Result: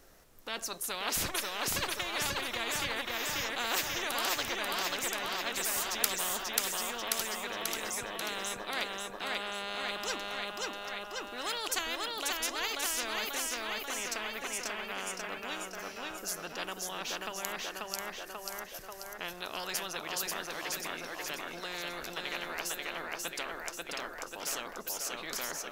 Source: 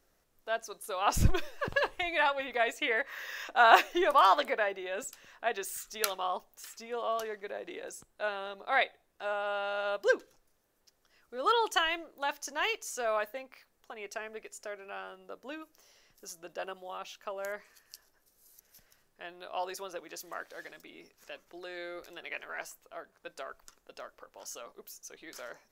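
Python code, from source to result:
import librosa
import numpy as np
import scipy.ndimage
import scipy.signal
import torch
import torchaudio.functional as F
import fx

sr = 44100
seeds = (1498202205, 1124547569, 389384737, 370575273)

p1 = x + fx.echo_feedback(x, sr, ms=538, feedback_pct=48, wet_db=-4.0, dry=0)
y = fx.spectral_comp(p1, sr, ratio=4.0)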